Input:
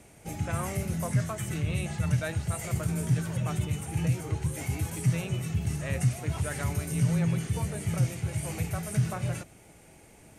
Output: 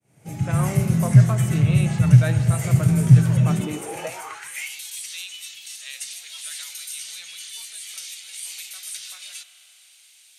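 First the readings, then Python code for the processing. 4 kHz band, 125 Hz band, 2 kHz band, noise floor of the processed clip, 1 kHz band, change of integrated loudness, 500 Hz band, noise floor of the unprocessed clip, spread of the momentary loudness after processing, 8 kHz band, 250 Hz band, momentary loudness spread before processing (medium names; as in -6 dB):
+10.5 dB, +9.0 dB, +4.5 dB, -53 dBFS, +4.0 dB, +10.5 dB, +3.5 dB, -55 dBFS, 19 LU, +6.5 dB, +7.5 dB, 5 LU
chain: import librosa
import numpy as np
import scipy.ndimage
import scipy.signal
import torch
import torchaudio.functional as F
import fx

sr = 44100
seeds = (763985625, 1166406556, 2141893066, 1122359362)

y = fx.fade_in_head(x, sr, length_s=0.64)
y = fx.rev_spring(y, sr, rt60_s=3.7, pass_ms=(33,), chirp_ms=35, drr_db=10.5)
y = fx.filter_sweep_highpass(y, sr, from_hz=130.0, to_hz=3700.0, start_s=3.39, end_s=4.8, q=3.3)
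y = y * 10.0 ** (5.5 / 20.0)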